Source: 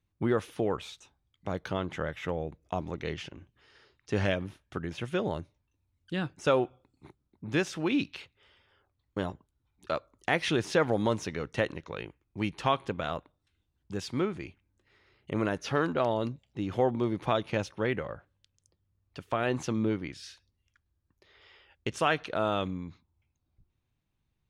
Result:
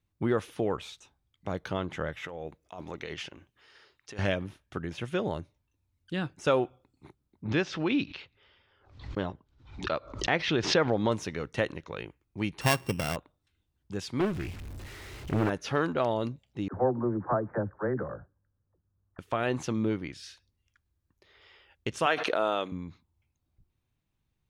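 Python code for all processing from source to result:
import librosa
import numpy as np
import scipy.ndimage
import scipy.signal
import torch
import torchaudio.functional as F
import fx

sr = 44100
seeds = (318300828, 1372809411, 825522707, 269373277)

y = fx.chain(x, sr, fx.low_shelf(hz=310.0, db=-10.5),
    fx.over_compress(threshold_db=-39.0, ratio=-1.0), at=(2.24, 4.19))
y = fx.chain(y, sr, fx.lowpass(hz=5300.0, slope=24),
    fx.pre_swell(db_per_s=100.0), at=(7.45, 11.12))
y = fx.chain(y, sr, fx.sample_sort(block=16),
    fx.peak_eq(hz=120.0, db=7.5, octaves=1.9), at=(12.61, 13.16))
y = fx.chain(y, sr, fx.zero_step(step_db=-41.5),
    fx.low_shelf(hz=120.0, db=11.5),
    fx.doppler_dist(depth_ms=0.74), at=(14.2, 15.5))
y = fx.chain(y, sr, fx.steep_lowpass(hz=1700.0, slope=72),
    fx.dispersion(late='lows', ms=55.0, hz=390.0), at=(16.68, 19.19))
y = fx.chain(y, sr, fx.highpass(hz=390.0, slope=12),
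    fx.low_shelf(hz=500.0, db=4.0),
    fx.pre_swell(db_per_s=31.0), at=(22.06, 22.72))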